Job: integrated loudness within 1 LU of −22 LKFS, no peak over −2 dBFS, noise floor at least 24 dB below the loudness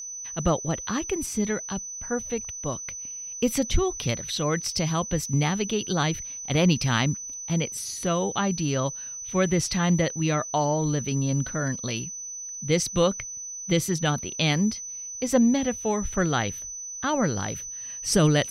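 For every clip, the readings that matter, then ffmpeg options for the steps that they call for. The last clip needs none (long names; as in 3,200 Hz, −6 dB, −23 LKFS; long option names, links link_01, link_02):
interfering tone 6,000 Hz; level of the tone −34 dBFS; integrated loudness −26.0 LKFS; sample peak −9.5 dBFS; target loudness −22.0 LKFS
→ -af "bandreject=frequency=6000:width=30"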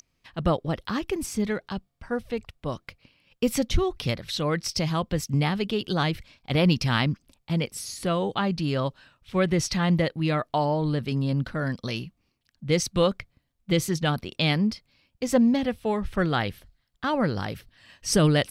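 interfering tone none found; integrated loudness −26.5 LKFS; sample peak −9.5 dBFS; target loudness −22.0 LKFS
→ -af "volume=4.5dB"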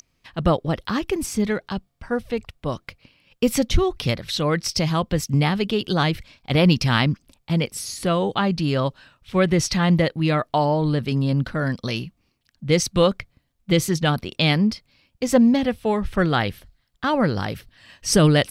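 integrated loudness −22.0 LKFS; sample peak −5.0 dBFS; background noise floor −69 dBFS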